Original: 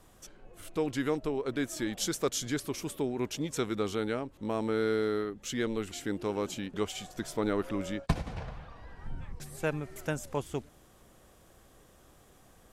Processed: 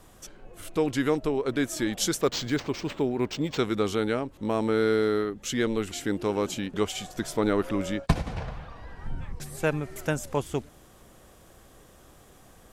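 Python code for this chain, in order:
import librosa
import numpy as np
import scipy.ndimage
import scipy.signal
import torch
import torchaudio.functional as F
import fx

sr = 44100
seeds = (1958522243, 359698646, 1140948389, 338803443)

y = fx.resample_linear(x, sr, factor=4, at=(2.21, 3.59))
y = y * 10.0 ** (5.5 / 20.0)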